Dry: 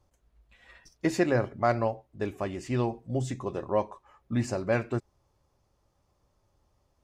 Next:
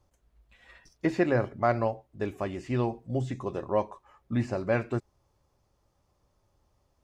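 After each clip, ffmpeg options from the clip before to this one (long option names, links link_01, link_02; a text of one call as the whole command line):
ffmpeg -i in.wav -filter_complex "[0:a]acrossover=split=3700[link_01][link_02];[link_02]acompressor=threshold=-56dB:ratio=4:attack=1:release=60[link_03];[link_01][link_03]amix=inputs=2:normalize=0" out.wav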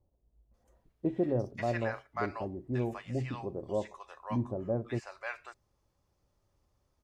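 ffmpeg -i in.wav -filter_complex "[0:a]acrossover=split=800[link_01][link_02];[link_02]adelay=540[link_03];[link_01][link_03]amix=inputs=2:normalize=0,volume=-4dB" out.wav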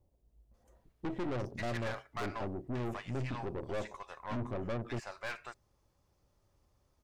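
ffmpeg -i in.wav -af "aeval=exprs='(tanh(89.1*val(0)+0.6)-tanh(0.6))/89.1':channel_layout=same,volume=5dB" out.wav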